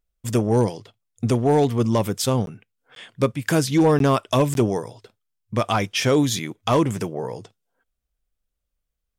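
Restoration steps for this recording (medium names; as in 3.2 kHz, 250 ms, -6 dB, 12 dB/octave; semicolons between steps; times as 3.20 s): clip repair -11 dBFS; interpolate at 2.46/2.95/3.99/4.54 s, 12 ms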